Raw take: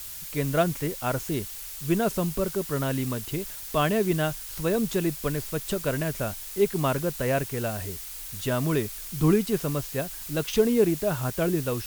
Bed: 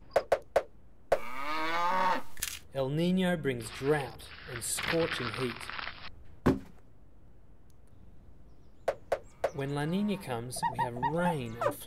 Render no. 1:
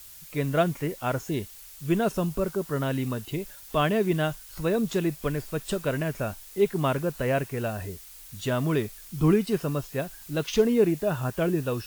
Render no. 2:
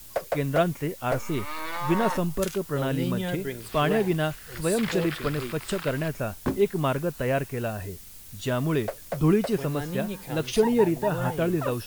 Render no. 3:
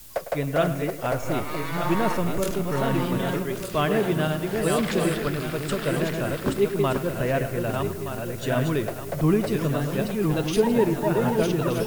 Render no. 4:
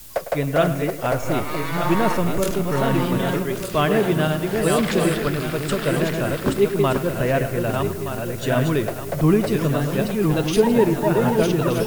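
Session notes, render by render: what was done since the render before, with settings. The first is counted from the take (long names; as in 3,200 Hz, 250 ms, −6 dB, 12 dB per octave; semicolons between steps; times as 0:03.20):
noise reduction from a noise print 8 dB
mix in bed −1.5 dB
feedback delay that plays each chunk backwards 611 ms, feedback 52%, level −4 dB; on a send: bucket-brigade delay 104 ms, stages 2,048, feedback 52%, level −13 dB
level +4 dB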